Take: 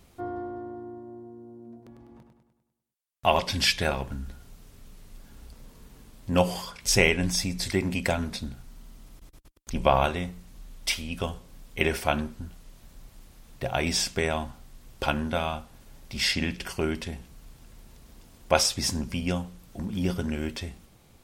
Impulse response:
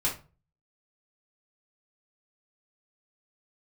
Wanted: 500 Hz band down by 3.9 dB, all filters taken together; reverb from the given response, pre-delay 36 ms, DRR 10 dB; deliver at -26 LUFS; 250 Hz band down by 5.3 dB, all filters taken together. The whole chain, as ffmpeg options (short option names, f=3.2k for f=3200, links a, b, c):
-filter_complex "[0:a]equalizer=f=250:t=o:g=-6.5,equalizer=f=500:t=o:g=-3.5,asplit=2[a][b];[1:a]atrim=start_sample=2205,adelay=36[c];[b][c]afir=irnorm=-1:irlink=0,volume=-17.5dB[d];[a][d]amix=inputs=2:normalize=0,volume=2.5dB"